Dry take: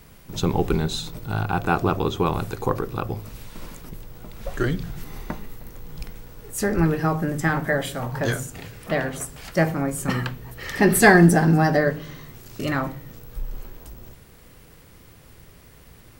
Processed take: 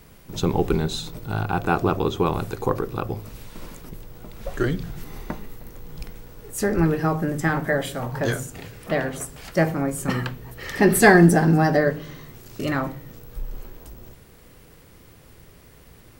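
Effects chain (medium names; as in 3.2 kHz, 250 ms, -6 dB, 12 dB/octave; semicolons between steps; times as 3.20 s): peaking EQ 400 Hz +2.5 dB 1.5 oct; trim -1 dB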